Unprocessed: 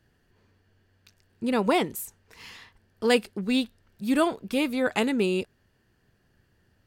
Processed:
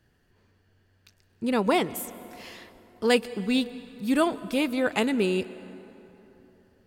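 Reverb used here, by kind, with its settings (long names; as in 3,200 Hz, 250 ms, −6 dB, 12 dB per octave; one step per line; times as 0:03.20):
dense smooth reverb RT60 3.6 s, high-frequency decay 0.55×, pre-delay 115 ms, DRR 16.5 dB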